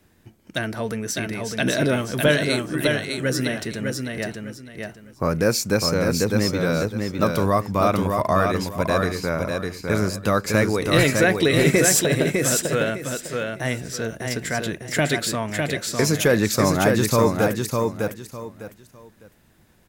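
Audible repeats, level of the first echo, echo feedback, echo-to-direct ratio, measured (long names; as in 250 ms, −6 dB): 3, −4.0 dB, 25%, −3.5 dB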